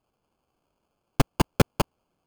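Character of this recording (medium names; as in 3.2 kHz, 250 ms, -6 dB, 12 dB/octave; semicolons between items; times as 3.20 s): phasing stages 6, 1 Hz, lowest notch 650–1900 Hz; aliases and images of a low sample rate 1.9 kHz, jitter 0%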